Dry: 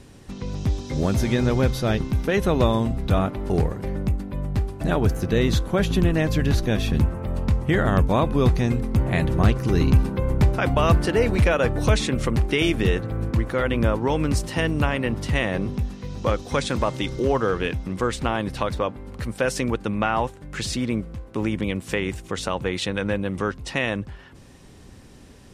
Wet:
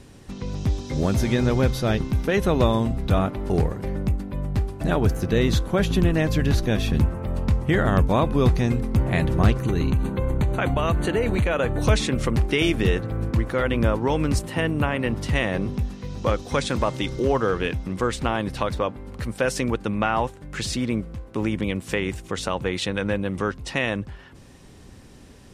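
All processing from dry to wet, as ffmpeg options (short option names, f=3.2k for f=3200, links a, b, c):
-filter_complex "[0:a]asettb=1/sr,asplit=3[a][b][c];[a]atrim=end=9.604[d];[b]atrim=start=9.6:end=11.82,asetpts=PTS-STARTPTS,afade=t=in:d=0.004:c=qsin,afade=t=out:st=2.216:d=0.004:c=qsin,acompressor=threshold=-17dB:ratio=6:attack=3.2:release=140:knee=1:detection=peak,asuperstop=centerf=5200:order=12:qfactor=3.8[e];[c]atrim=start=11.816[f];[d][e]acrossfade=d=0.004:c1=hsin:c2=qsin[g];[g][f]acrossfade=d=0.004:c1=qsin:c2=hsin,asettb=1/sr,asplit=3[h][i][j];[h]atrim=end=14.394[k];[i]atrim=start=14.39:end=14.99,asetpts=PTS-STARTPTS,afade=t=in:d=0.004:c=qsin,afade=t=out:st=0.596:d=0.004:c=qsin,highpass=74,equalizer=f=5.4k:w=1.4:g=-10[l];[j]atrim=start=14.986[m];[k][l]acrossfade=d=0.004:c1=hsin:c2=qsin[n];[n][m]acrossfade=d=0.004:c1=qsin:c2=hsin"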